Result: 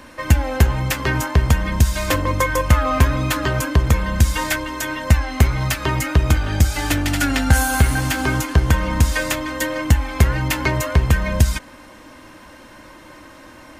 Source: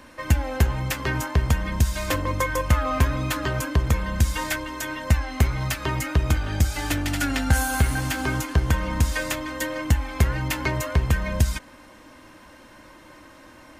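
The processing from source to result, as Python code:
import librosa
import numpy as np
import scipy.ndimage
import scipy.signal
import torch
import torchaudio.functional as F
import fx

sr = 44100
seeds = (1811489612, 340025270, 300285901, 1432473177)

y = x * librosa.db_to_amplitude(5.5)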